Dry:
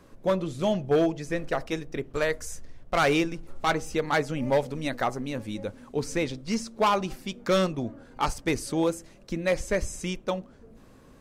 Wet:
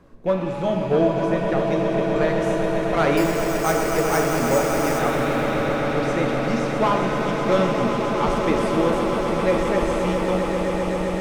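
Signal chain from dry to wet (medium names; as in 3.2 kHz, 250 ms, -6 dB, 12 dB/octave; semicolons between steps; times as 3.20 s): rattle on loud lows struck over -41 dBFS, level -34 dBFS; treble shelf 3.1 kHz -11.5 dB; on a send: echo with a slow build-up 131 ms, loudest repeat 8, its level -9.5 dB; 3.17–4.99 s: on the sum: careless resampling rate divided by 6×, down filtered, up hold; pitch-shifted reverb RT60 2 s, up +7 st, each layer -8 dB, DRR 3.5 dB; trim +2 dB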